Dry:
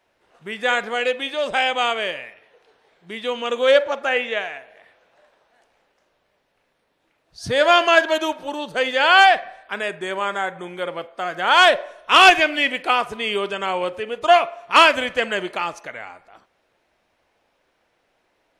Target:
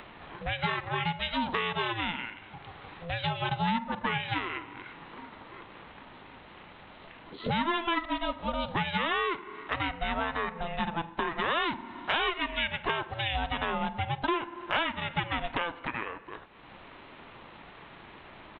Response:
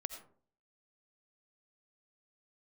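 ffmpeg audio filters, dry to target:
-af "aresample=8000,aresample=44100,acompressor=threshold=-28dB:ratio=6,aeval=exprs='val(0)*sin(2*PI*340*n/s)':c=same,acompressor=mode=upward:threshold=-36dB:ratio=2.5,volume=3.5dB"

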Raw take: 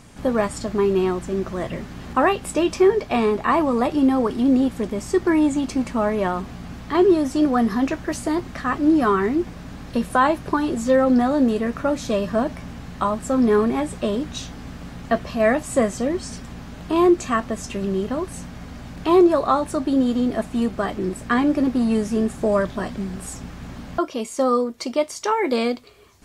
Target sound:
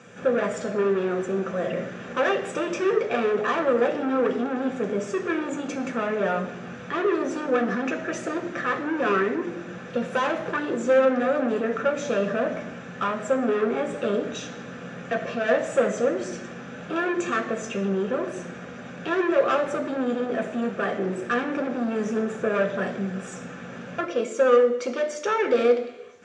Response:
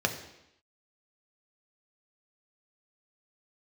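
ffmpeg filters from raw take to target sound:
-filter_complex "[0:a]asoftclip=type=tanh:threshold=-22dB,highpass=240,equalizer=f=290:t=q:w=4:g=-5,equalizer=f=500:t=q:w=4:g=6,equalizer=f=960:t=q:w=4:g=-4,equalizer=f=1.4k:t=q:w=4:g=5,equalizer=f=2k:t=q:w=4:g=4,equalizer=f=4.7k:t=q:w=4:g=-9,lowpass=f=8k:w=0.5412,lowpass=f=8k:w=1.3066[a];[1:a]atrim=start_sample=2205[b];[a][b]afir=irnorm=-1:irlink=0,volume=-8dB"

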